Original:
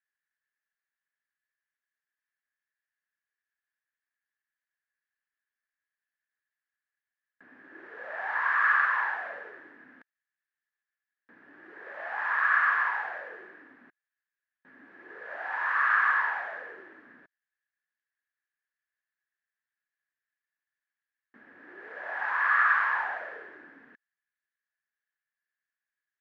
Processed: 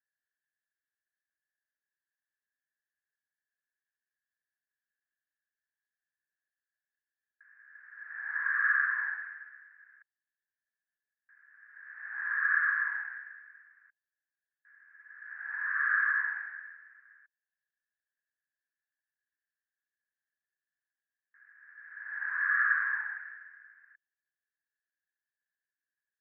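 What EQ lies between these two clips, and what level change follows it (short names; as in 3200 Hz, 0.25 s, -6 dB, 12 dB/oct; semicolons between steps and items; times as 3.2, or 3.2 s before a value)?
ladder band-pass 1800 Hz, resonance 65%; fixed phaser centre 1400 Hz, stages 4; 0.0 dB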